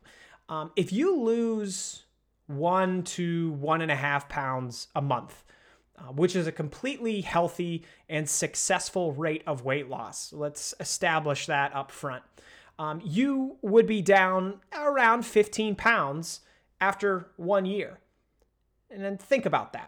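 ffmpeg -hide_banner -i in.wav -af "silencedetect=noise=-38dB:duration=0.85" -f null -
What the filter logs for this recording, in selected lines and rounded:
silence_start: 17.92
silence_end: 18.92 | silence_duration: 0.99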